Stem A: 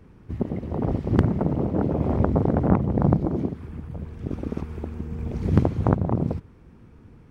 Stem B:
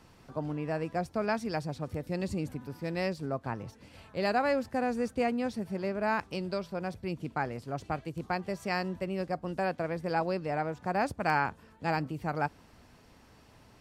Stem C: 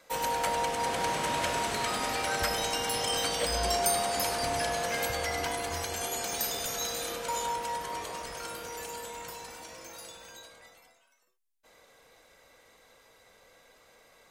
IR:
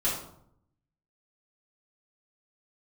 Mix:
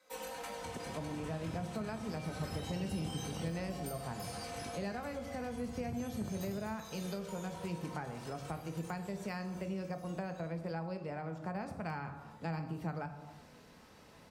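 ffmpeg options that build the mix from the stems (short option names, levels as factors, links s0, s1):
-filter_complex "[0:a]adelay=350,volume=0.2[s0];[1:a]adelay=600,volume=0.75,asplit=2[s1][s2];[s2]volume=0.224[s3];[2:a]aecho=1:1:3.9:0.81,flanger=delay=19:depth=3.9:speed=1.8,volume=0.282,asplit=2[s4][s5];[s5]volume=0.299[s6];[s0][s4]amix=inputs=2:normalize=0,acompressor=threshold=0.00891:ratio=2,volume=1[s7];[3:a]atrim=start_sample=2205[s8];[s3][s6]amix=inputs=2:normalize=0[s9];[s9][s8]afir=irnorm=-1:irlink=0[s10];[s1][s7][s10]amix=inputs=3:normalize=0,highpass=f=91:p=1,acrossover=split=170[s11][s12];[s12]acompressor=threshold=0.01:ratio=6[s13];[s11][s13]amix=inputs=2:normalize=0"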